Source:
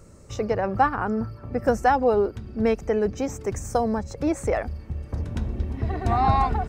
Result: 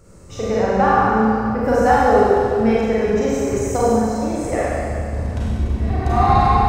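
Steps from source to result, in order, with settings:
0:03.89–0:04.52: downward compressor, threshold −26 dBFS, peak gain reduction 7.5 dB
four-comb reverb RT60 2.4 s, combs from 32 ms, DRR −8 dB
level −1 dB

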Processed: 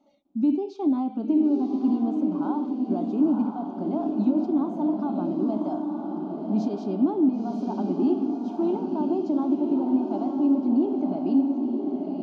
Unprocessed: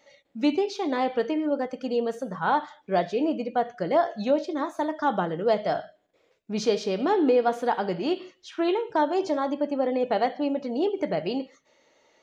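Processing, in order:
low-pass filter 1,400 Hz 6 dB per octave
brickwall limiter −21.5 dBFS, peak gain reduction 9 dB
parametric band 240 Hz +15 dB 1.6 octaves
phaser with its sweep stopped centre 490 Hz, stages 6
feedback delay with all-pass diffusion 995 ms, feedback 48%, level −3.5 dB
level −4.5 dB

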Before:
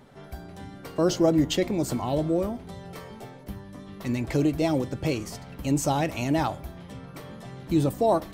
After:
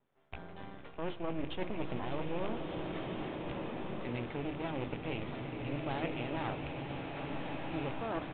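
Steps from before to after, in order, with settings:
loose part that buzzes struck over −31 dBFS, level −26 dBFS
mains-hum notches 50/100/150/200/250/300/350 Hz
noise gate with hold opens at −35 dBFS
low-shelf EQ 69 Hz −11.5 dB
reversed playback
downward compressor, threshold −32 dBFS, peak gain reduction 15 dB
reversed playback
half-wave rectification
on a send: echo that builds up and dies away 151 ms, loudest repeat 5, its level −17.5 dB
on the sum: downsampling to 8,000 Hz
slow-attack reverb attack 1,610 ms, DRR 2 dB

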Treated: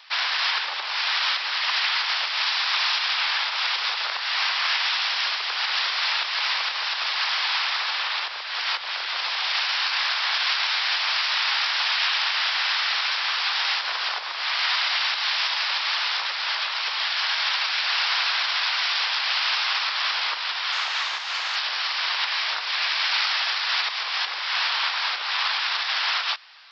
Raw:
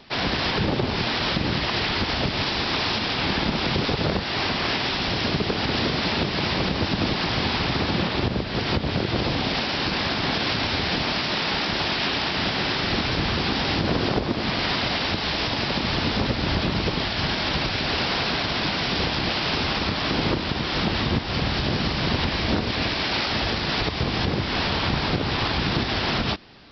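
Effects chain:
0:20.72–0:21.56: variable-slope delta modulation 32 kbit/s
high-pass filter 1,000 Hz 24 dB per octave
level +3 dB

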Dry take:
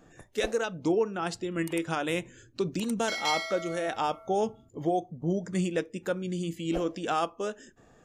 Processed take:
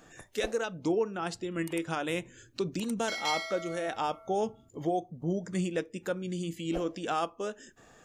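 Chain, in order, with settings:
one half of a high-frequency compander encoder only
level −2.5 dB

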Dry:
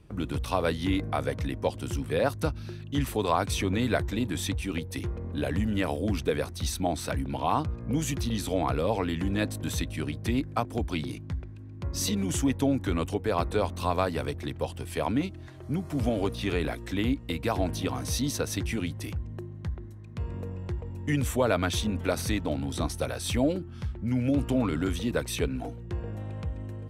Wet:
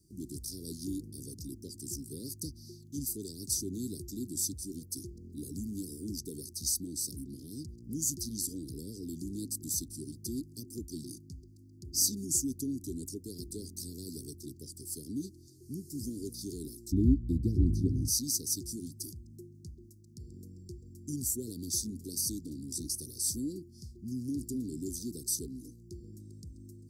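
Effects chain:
Chebyshev band-stop filter 380–4,700 Hz, order 5
spectral tilt +3 dB per octave, from 0:16.91 −2.5 dB per octave, from 0:18.07 +3 dB per octave
level −3 dB

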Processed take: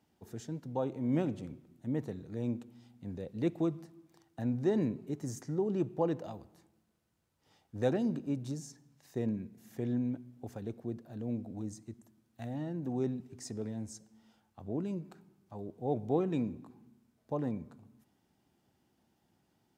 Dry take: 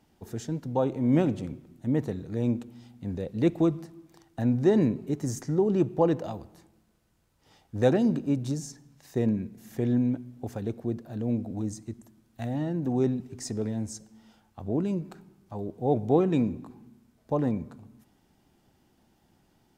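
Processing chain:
high-pass filter 72 Hz
level −8 dB

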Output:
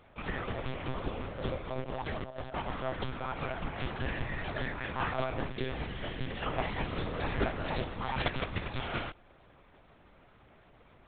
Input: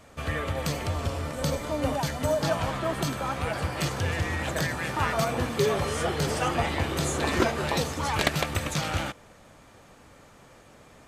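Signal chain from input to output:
0:01.73–0:02.73: compressor whose output falls as the input rises −30 dBFS, ratio −0.5
0:05.51–0:06.46: gain on a spectral selection 280–1,600 Hz −7 dB
one-pitch LPC vocoder at 8 kHz 130 Hz
level −6.5 dB

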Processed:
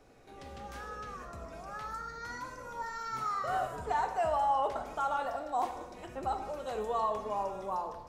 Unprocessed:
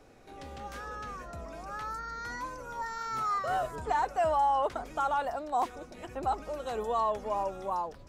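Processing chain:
dense smooth reverb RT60 1 s, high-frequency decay 0.95×, DRR 5 dB
level −3.5 dB

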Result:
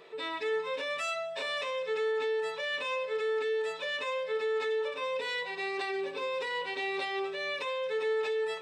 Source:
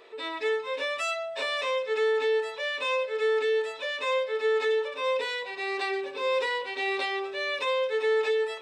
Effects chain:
parametric band 160 Hz +13.5 dB 0.61 octaves
brickwall limiter −25 dBFS, peak gain reduction 6.5 dB
convolution reverb, pre-delay 3 ms, DRR 14.5 dB
level −1.5 dB

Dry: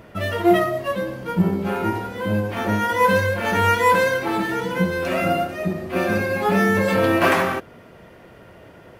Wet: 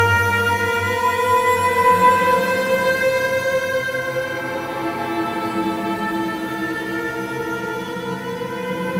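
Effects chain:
extreme stretch with random phases 8.3×, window 0.25 s, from 0:03.68
harmonic generator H 4 −31 dB, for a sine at −2 dBFS

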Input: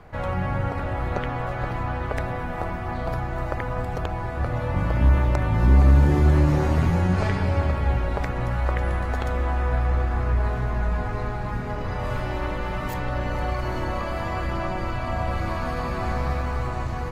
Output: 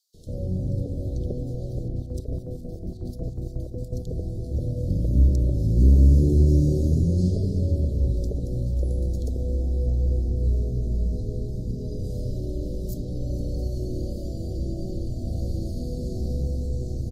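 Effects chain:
inverse Chebyshev band-stop filter 910–2,500 Hz, stop band 50 dB
0:01.78–0:03.93: square-wave tremolo 5.5 Hz, depth 60%, duty 55%
multiband delay without the direct sound highs, lows 140 ms, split 2,000 Hz

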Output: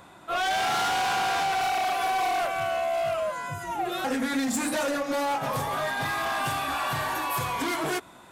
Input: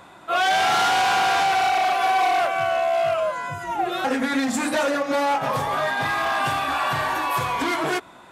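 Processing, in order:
high-shelf EQ 6,500 Hz +6.5 dB, from 0:01.61 +11.5 dB
soft clipping −16.5 dBFS, distortion −19 dB
low-shelf EQ 300 Hz +5 dB
level −5 dB

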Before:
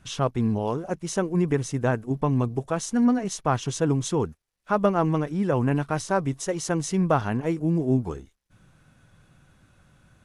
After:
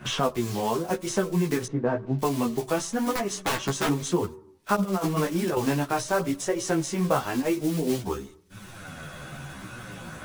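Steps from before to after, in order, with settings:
one scale factor per block 5 bits
low-shelf EQ 170 Hz −8 dB
0:03.15–0:03.88: wrap-around overflow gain 21 dB
convolution reverb RT60 0.55 s, pre-delay 3 ms, DRR 16.5 dB
flanger 0.92 Hz, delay 8.1 ms, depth 7.9 ms, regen +10%
0:01.66–0:02.19: Bessel low-pass filter 940 Hz, order 2
0:04.75–0:05.57: compressor whose output falls as the input rises −30 dBFS, ratio −0.5
multi-voice chorus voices 2, 0.24 Hz, delay 14 ms, depth 4.2 ms
multiband upward and downward compressor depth 70%
level +7.5 dB

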